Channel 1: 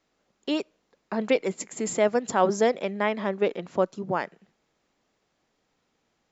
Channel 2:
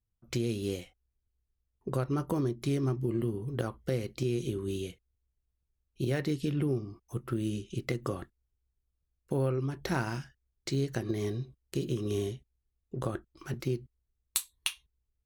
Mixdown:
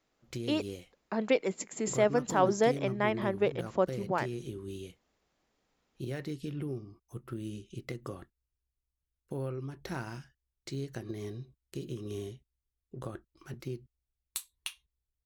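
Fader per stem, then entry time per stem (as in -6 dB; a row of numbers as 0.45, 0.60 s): -4.0, -7.0 dB; 0.00, 0.00 s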